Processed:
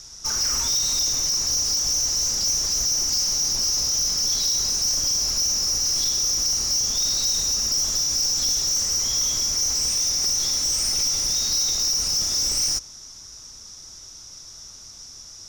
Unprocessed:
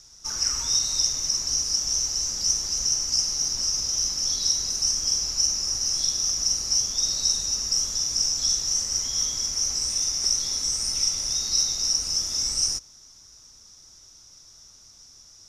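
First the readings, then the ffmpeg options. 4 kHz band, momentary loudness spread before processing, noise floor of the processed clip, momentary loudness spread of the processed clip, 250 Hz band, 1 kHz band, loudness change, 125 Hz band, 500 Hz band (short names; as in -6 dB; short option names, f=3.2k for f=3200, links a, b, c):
+2.5 dB, 2 LU, -43 dBFS, 20 LU, +5.0 dB, +5.0 dB, +2.5 dB, +4.0 dB, +6.0 dB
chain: -filter_complex "[0:a]asplit=2[a][b];[b]alimiter=limit=-17.5dB:level=0:latency=1,volume=-1dB[c];[a][c]amix=inputs=2:normalize=0,asoftclip=type=tanh:threshold=-22dB,volume=3dB"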